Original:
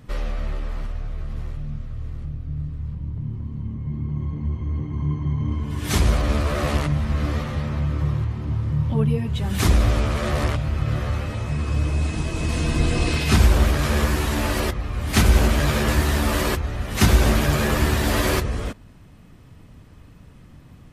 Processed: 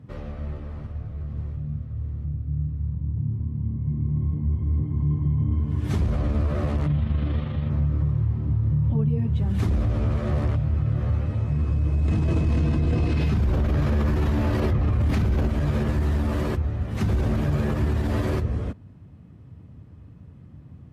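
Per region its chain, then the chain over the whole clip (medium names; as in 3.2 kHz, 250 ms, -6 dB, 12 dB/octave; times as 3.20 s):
6.87–7.70 s: resonant low-pass 3.4 kHz, resonance Q 3.2 + AM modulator 25 Hz, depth 25%
12.08–15.47 s: dynamic bell 8.7 kHz, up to -6 dB, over -47 dBFS, Q 1.8 + level flattener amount 100%
whole clip: high-pass 76 Hz 24 dB/octave; tilt EQ -3.5 dB/octave; peak limiter -8 dBFS; trim -7.5 dB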